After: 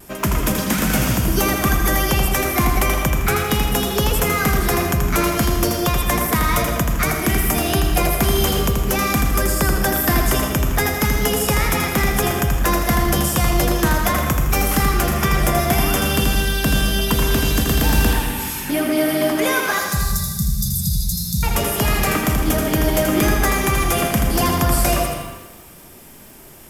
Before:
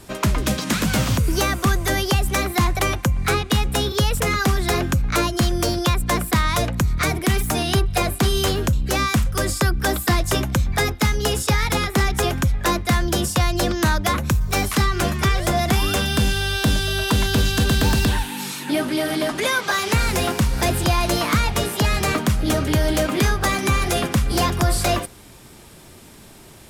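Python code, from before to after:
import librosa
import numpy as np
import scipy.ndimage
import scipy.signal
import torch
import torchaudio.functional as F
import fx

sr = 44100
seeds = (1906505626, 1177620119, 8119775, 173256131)

y = fx.graphic_eq_31(x, sr, hz=(100, 4000, 12500), db=(-8, -8, 11))
y = fx.vibrato(y, sr, rate_hz=0.36, depth_cents=9.0)
y = fx.brickwall_bandstop(y, sr, low_hz=210.0, high_hz=3500.0, at=(19.78, 21.43))
y = fx.rev_freeverb(y, sr, rt60_s=1.3, hf_ratio=0.75, predelay_ms=75, drr_db=5.0)
y = fx.echo_crushed(y, sr, ms=81, feedback_pct=35, bits=7, wet_db=-5.0)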